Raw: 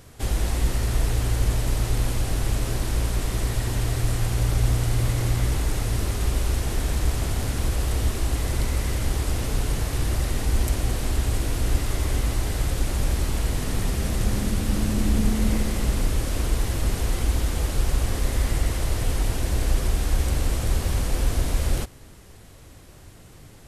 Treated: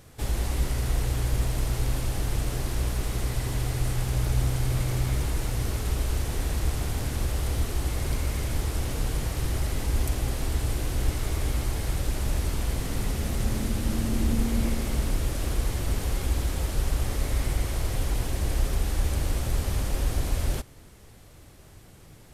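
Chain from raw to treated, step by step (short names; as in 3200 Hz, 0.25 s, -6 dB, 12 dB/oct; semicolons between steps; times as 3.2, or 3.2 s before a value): wide varispeed 1.06×; gain -3.5 dB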